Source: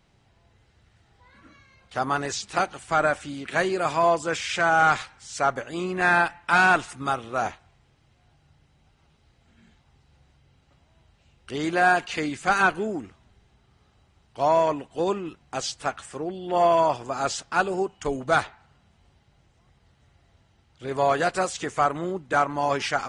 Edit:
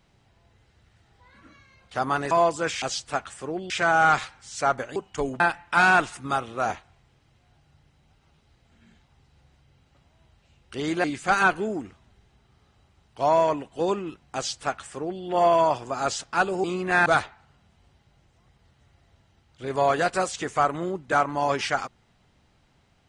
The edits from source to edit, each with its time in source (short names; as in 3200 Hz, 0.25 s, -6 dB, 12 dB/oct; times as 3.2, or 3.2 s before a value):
2.31–3.97 cut
5.74–6.16 swap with 17.83–18.27
11.8–12.23 cut
15.54–16.42 copy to 4.48